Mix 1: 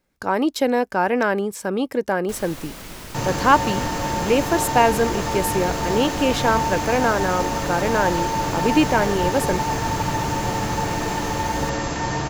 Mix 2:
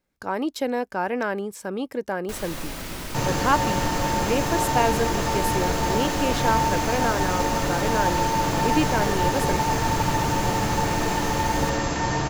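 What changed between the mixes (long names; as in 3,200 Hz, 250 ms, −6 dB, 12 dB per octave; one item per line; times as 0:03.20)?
speech −6.0 dB
first sound: send +10.0 dB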